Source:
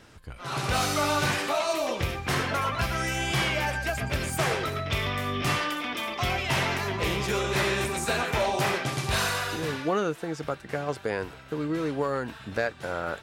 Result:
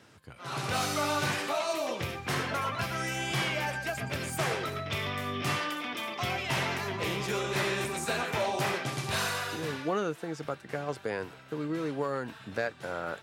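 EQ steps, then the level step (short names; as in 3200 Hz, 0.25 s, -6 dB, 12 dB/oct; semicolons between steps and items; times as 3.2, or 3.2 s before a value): HPF 96 Hz 24 dB/oct; -4.0 dB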